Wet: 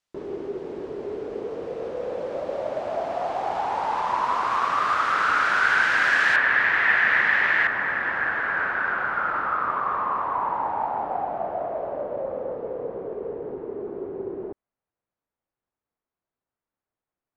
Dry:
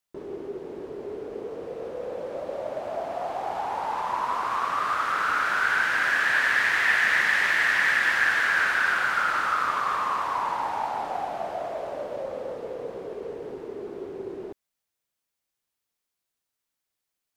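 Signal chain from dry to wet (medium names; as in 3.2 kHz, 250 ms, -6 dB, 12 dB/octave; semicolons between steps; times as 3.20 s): low-pass 7 kHz 12 dB/octave, from 6.36 s 2.3 kHz, from 7.67 s 1.2 kHz; trim +3.5 dB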